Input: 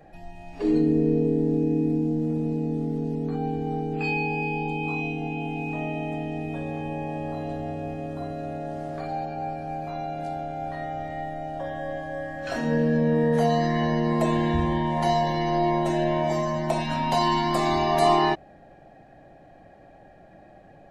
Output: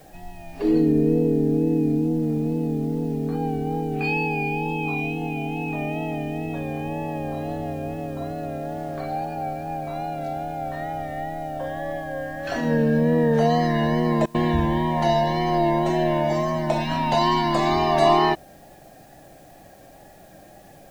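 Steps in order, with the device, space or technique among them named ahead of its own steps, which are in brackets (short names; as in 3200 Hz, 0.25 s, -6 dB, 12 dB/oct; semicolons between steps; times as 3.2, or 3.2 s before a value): worn cassette (LPF 6700 Hz; wow and flutter; level dips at 14.26, 84 ms -26 dB; white noise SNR 34 dB); gain +2.5 dB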